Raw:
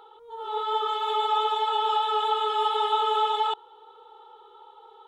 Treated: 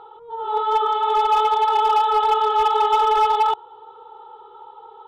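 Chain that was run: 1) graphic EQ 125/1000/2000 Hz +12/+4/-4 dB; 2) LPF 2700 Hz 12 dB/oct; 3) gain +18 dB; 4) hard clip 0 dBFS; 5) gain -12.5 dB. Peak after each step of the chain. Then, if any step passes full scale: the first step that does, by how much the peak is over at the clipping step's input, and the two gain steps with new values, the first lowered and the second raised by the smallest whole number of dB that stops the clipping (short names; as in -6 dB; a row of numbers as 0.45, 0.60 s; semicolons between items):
-11.5, -12.0, +6.0, 0.0, -12.5 dBFS; step 3, 6.0 dB; step 3 +12 dB, step 5 -6.5 dB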